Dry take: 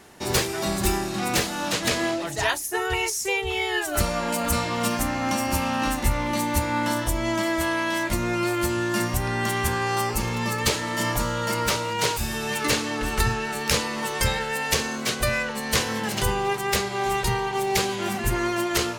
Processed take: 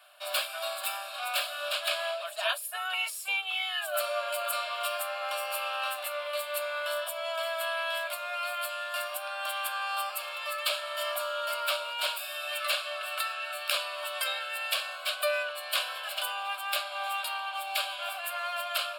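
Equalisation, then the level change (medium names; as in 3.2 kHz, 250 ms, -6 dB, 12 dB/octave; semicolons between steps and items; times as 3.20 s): rippled Chebyshev high-pass 580 Hz, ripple 3 dB; static phaser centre 1.3 kHz, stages 8; 0.0 dB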